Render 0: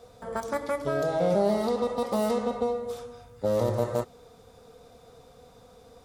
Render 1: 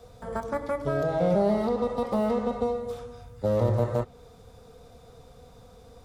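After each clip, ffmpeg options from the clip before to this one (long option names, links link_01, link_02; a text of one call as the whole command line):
ffmpeg -i in.wav -filter_complex "[0:a]acrossover=split=250|1800|3300[link_01][link_02][link_03][link_04];[link_01]lowshelf=frequency=160:gain=9.5[link_05];[link_03]alimiter=level_in=17.5dB:limit=-24dB:level=0:latency=1:release=465,volume=-17.5dB[link_06];[link_04]acompressor=threshold=-56dB:ratio=6[link_07];[link_05][link_02][link_06][link_07]amix=inputs=4:normalize=0" out.wav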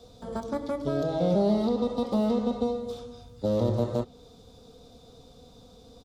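ffmpeg -i in.wav -af "firequalizer=gain_entry='entry(120,0);entry(260,9);entry(450,2);entry(1900,-6);entry(3600,10);entry(9400,0)':delay=0.05:min_phase=1,volume=-3.5dB" out.wav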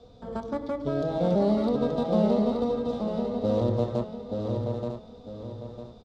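ffmpeg -i in.wav -filter_complex "[0:a]asplit=2[link_01][link_02];[link_02]aecho=0:1:878:0.562[link_03];[link_01][link_03]amix=inputs=2:normalize=0,adynamicsmooth=sensitivity=6:basefreq=3700,asplit=2[link_04][link_05];[link_05]aecho=0:1:951|1902|2853:0.355|0.103|0.0298[link_06];[link_04][link_06]amix=inputs=2:normalize=0" out.wav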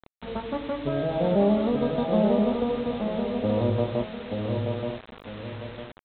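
ffmpeg -i in.wav -filter_complex "[0:a]asplit=2[link_01][link_02];[link_02]adelay=20,volume=-11.5dB[link_03];[link_01][link_03]amix=inputs=2:normalize=0,aresample=8000,acrusher=bits=6:mix=0:aa=0.000001,aresample=44100,volume=1dB" out.wav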